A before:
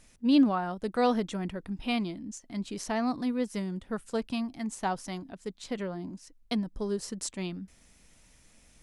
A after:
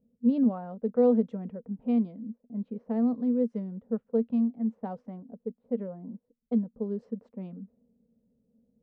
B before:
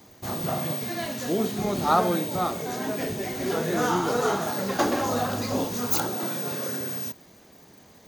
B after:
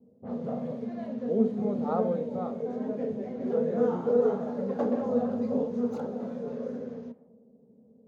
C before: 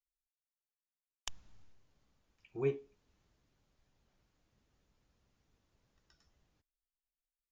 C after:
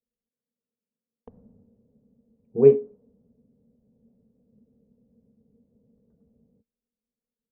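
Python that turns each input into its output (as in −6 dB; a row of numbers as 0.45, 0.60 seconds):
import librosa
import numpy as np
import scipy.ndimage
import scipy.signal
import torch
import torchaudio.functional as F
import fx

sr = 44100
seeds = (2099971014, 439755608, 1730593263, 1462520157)

y = fx.env_lowpass(x, sr, base_hz=310.0, full_db=-25.5)
y = fx.double_bandpass(y, sr, hz=330.0, octaves=1.0)
y = y * 10.0 ** (-30 / 20.0) / np.sqrt(np.mean(np.square(y)))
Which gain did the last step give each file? +7.0, +6.0, +28.0 decibels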